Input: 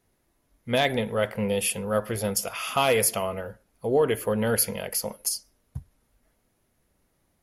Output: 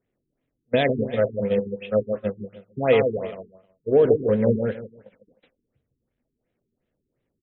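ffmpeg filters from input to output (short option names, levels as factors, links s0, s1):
-filter_complex "[0:a]aeval=exprs='val(0)+0.5*0.0251*sgn(val(0))':c=same,agate=range=0.00708:threshold=0.0708:ratio=16:detection=peak,equalizer=f=125:t=o:w=1:g=6,equalizer=f=250:t=o:w=1:g=6,equalizer=f=500:t=o:w=1:g=9,equalizer=f=1000:t=o:w=1:g=-6,equalizer=f=2000:t=o:w=1:g=5,equalizer=f=8000:t=o:w=1:g=5,asplit=2[s0][s1];[s1]acompressor=threshold=0.1:ratio=6,volume=0.708[s2];[s0][s2]amix=inputs=2:normalize=0,flanger=delay=4.5:depth=6.4:regen=84:speed=0.6:shape=triangular,aecho=1:1:154|308|462:0.531|0.127|0.0306,afftfilt=real='re*lt(b*sr/1024,410*pow(4100/410,0.5+0.5*sin(2*PI*2.8*pts/sr)))':imag='im*lt(b*sr/1024,410*pow(4100/410,0.5+0.5*sin(2*PI*2.8*pts/sr)))':win_size=1024:overlap=0.75,volume=0.841"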